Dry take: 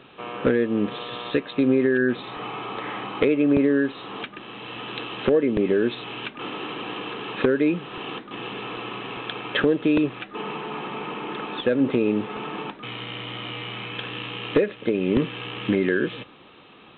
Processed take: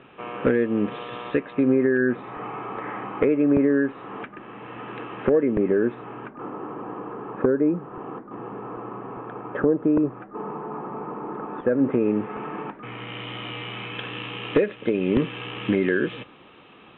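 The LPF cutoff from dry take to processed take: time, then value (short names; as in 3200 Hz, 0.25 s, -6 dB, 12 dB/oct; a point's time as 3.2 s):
LPF 24 dB/oct
1.15 s 2700 Hz
1.83 s 2000 Hz
5.52 s 2000 Hz
6.54 s 1300 Hz
11.4 s 1300 Hz
12.05 s 2000 Hz
12.82 s 2000 Hz
13.24 s 3300 Hz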